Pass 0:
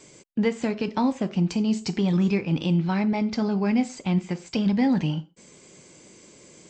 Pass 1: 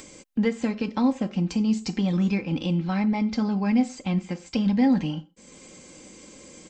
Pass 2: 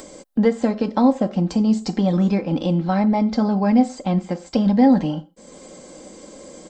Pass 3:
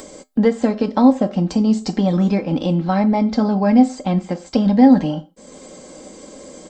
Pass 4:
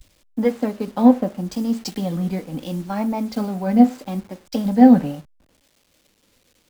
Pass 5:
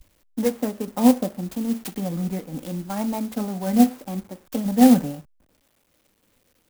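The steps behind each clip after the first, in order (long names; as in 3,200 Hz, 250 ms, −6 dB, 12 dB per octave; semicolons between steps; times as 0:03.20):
upward compression, threshold −38 dBFS; low-shelf EQ 90 Hz +6.5 dB; comb filter 3.8 ms, depth 52%; level −2.5 dB
graphic EQ with 15 bands 100 Hz −12 dB, 630 Hz +8 dB, 2,500 Hz −10 dB, 6,300 Hz −5 dB; level +6 dB
tuned comb filter 86 Hz, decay 0.17 s, harmonics odd, mix 50%; level +6.5 dB
hold until the input has moved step −33 dBFS; pitch vibrato 0.75 Hz 95 cents; multiband upward and downward expander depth 100%; level −6 dB
converter with an unsteady clock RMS 0.065 ms; level −3 dB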